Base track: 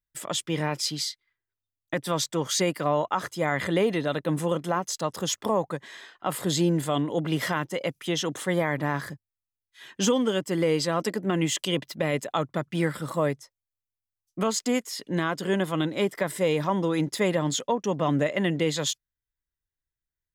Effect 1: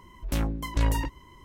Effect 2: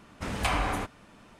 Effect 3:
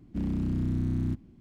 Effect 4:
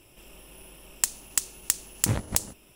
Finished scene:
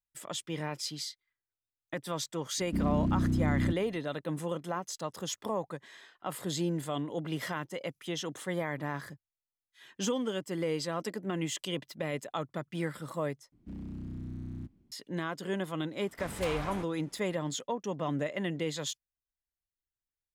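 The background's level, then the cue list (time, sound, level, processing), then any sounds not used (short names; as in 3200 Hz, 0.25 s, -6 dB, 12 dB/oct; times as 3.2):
base track -8.5 dB
2.58 add 3 -2 dB + bell 270 Hz +3.5 dB 1.9 oct
13.52 replace with 3 -12 dB
15.98 add 2 -9.5 dB + wavefolder -21.5 dBFS
not used: 1, 4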